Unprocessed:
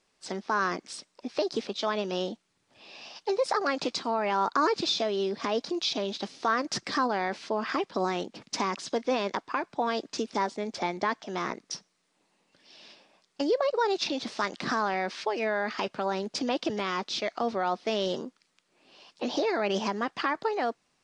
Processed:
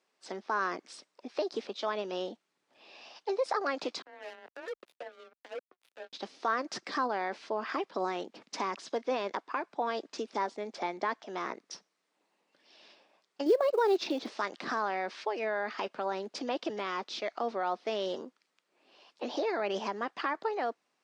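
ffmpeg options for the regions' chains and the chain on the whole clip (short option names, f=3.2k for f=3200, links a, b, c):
-filter_complex "[0:a]asettb=1/sr,asplit=3[a][b][c];[a]atrim=end=4.024[d];[b]atrim=start=4.02:end=6.13,asetpts=PTS-STARTPTS,afade=t=in:d=0.004:c=qsin,afade=t=out:st=2.106:d=0.004:c=qsin,asplit=3[e][f][g];[e]bandpass=f=530:t=q:w=8,volume=0dB[h];[f]bandpass=f=1.84k:t=q:w=8,volume=-6dB[i];[g]bandpass=f=2.48k:t=q:w=8,volume=-9dB[j];[h][i][j]amix=inputs=3:normalize=0,acrusher=bits=5:mix=0:aa=0.5,afreqshift=23[k];[c]atrim=start=6.126[l];[d][k]acrossfade=d=0.004:c1=hsin:c2=qsin[m];[m][l]acrossfade=d=0.004:c1=qsin:c2=hsin,asettb=1/sr,asplit=3[n][o][p];[n]atrim=end=13.464[q];[o]atrim=start=13.46:end=14.3,asetpts=PTS-STARTPTS,afade=t=in:d=0.004:c=qsin,afade=t=out:st=0.836:d=0.004:c=qsin,equalizer=f=350:w=1.4:g=7.5,acrusher=bits=7:mode=log:mix=0:aa=0.000001[r];[p]atrim=start=14.296[s];[q][r]acrossfade=d=0.004:c1=hsin:c2=qsin[t];[t][s]acrossfade=d=0.004:c1=qsin:c2=hsin,highpass=300,highshelf=f=3.8k:g=-8,volume=-3dB"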